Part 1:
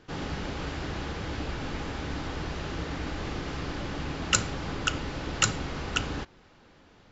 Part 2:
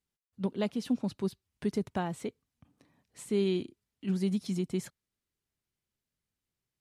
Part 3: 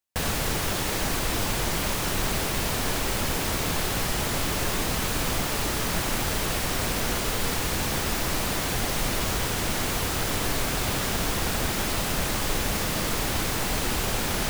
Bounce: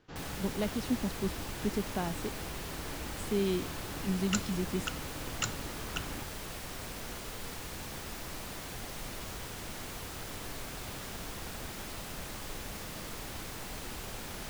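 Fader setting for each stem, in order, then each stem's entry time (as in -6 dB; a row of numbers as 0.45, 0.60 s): -10.0, -2.0, -15.0 dB; 0.00, 0.00, 0.00 s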